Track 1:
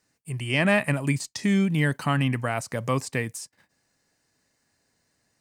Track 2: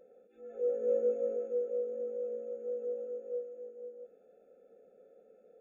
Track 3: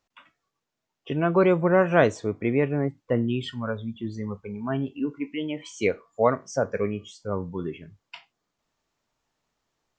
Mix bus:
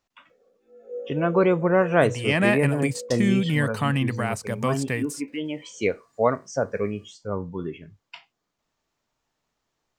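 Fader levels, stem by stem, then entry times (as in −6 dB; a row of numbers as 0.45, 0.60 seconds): 0.0, −2.5, 0.0 decibels; 1.75, 0.30, 0.00 seconds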